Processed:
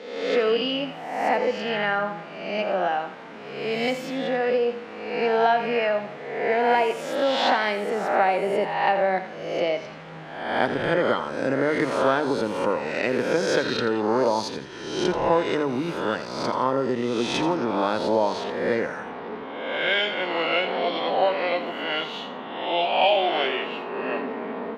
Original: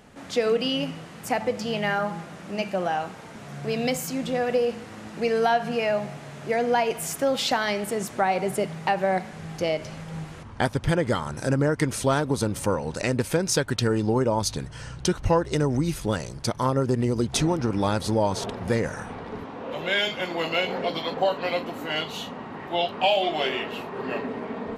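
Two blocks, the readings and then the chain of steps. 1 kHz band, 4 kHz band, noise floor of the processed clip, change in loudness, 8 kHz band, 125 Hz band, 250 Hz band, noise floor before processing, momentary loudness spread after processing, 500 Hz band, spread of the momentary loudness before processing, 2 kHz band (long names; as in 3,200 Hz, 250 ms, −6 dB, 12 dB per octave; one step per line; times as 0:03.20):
+3.5 dB, +1.0 dB, −38 dBFS, +1.5 dB, −10.0 dB, −10.0 dB, −1.0 dB, −42 dBFS, 10 LU, +2.5 dB, 12 LU, +3.5 dB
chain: peak hold with a rise ahead of every peak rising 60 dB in 1.01 s
three-way crossover with the lows and the highs turned down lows −21 dB, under 200 Hz, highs −23 dB, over 4,100 Hz
mains-hum notches 50/100/150 Hz
on a send: feedback echo with a high-pass in the loop 84 ms, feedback 34%, level −12 dB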